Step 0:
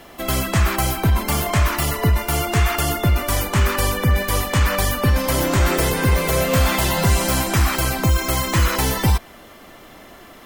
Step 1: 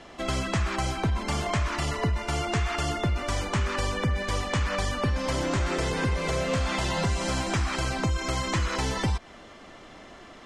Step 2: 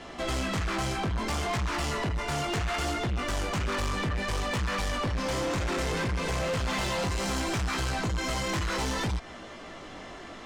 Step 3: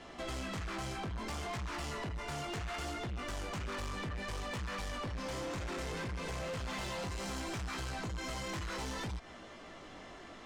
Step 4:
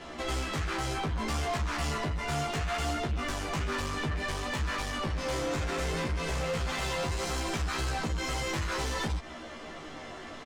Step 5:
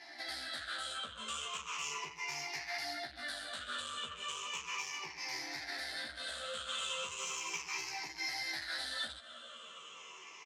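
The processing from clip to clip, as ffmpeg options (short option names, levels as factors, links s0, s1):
-af "acompressor=threshold=0.112:ratio=6,lowpass=f=7500:w=0.5412,lowpass=f=7500:w=1.3066,volume=0.631"
-af "flanger=delay=16:depth=5.3:speed=0.64,asoftclip=type=tanh:threshold=0.0211,volume=2.24"
-af "acompressor=threshold=0.0316:ratio=6,volume=0.422"
-filter_complex "[0:a]asplit=2[s0][s1];[s1]adelay=13,volume=0.794[s2];[s0][s2]amix=inputs=2:normalize=0,volume=1.88"
-af "afftfilt=real='re*pow(10,17/40*sin(2*PI*(0.76*log(max(b,1)*sr/1024/100)/log(2)-(-0.36)*(pts-256)/sr)))':imag='im*pow(10,17/40*sin(2*PI*(0.76*log(max(b,1)*sr/1024/100)/log(2)-(-0.36)*(pts-256)/sr)))':win_size=1024:overlap=0.75,bandpass=f=4200:t=q:w=0.65:csg=0,volume=0.596"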